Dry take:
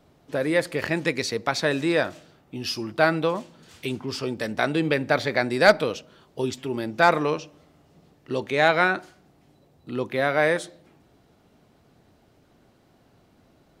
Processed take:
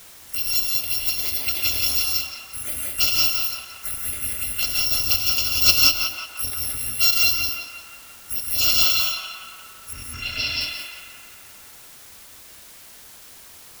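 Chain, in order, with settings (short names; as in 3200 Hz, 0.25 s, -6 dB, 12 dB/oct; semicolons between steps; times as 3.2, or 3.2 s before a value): FFT order left unsorted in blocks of 256 samples; 9.93–10.61 steep low-pass 5400 Hz 36 dB/oct; envelope phaser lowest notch 560 Hz, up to 1800 Hz, full sweep at -20 dBFS; on a send: narrowing echo 0.174 s, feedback 71%, band-pass 1400 Hz, level -3 dB; on the sum: non-linear reverb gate 0.22 s rising, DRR -0.5 dB; in parallel at -7 dB: requantised 6-bit, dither triangular; on the sum: gain -2 dB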